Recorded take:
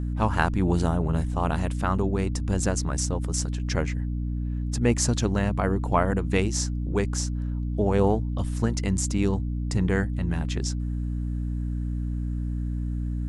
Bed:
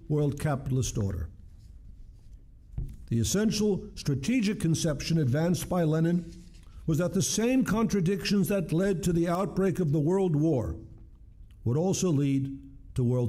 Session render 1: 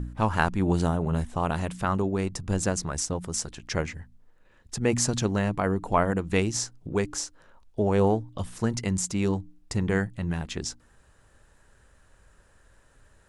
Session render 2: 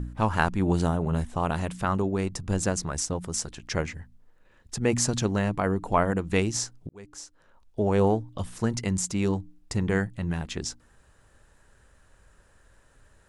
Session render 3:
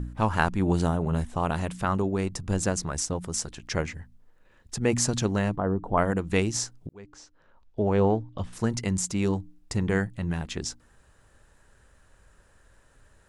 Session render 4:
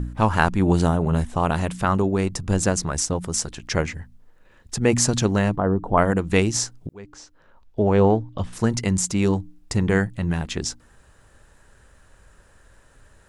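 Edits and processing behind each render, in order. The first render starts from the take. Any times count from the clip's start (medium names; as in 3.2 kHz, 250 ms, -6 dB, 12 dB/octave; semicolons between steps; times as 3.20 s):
de-hum 60 Hz, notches 5
6.89–7.89 s: fade in
5.56–5.98 s: boxcar filter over 19 samples; 6.93–8.53 s: distance through air 120 m
trim +5.5 dB; peak limiter -2 dBFS, peak gain reduction 1 dB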